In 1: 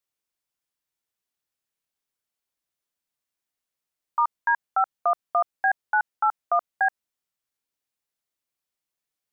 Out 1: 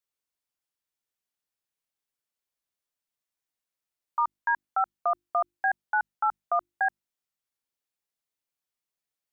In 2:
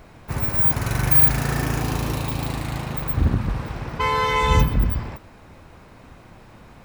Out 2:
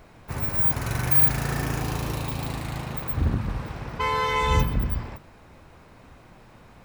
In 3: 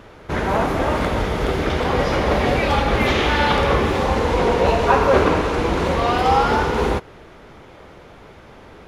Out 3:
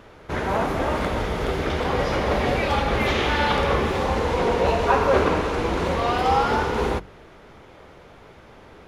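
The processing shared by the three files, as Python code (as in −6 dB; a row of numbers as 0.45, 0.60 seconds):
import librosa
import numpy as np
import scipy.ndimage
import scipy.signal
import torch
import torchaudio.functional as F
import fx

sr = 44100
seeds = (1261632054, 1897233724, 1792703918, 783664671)

y = fx.hum_notches(x, sr, base_hz=50, count=7)
y = y * 10.0 ** (-3.5 / 20.0)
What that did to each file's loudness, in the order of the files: −3.5, −3.5, −3.5 LU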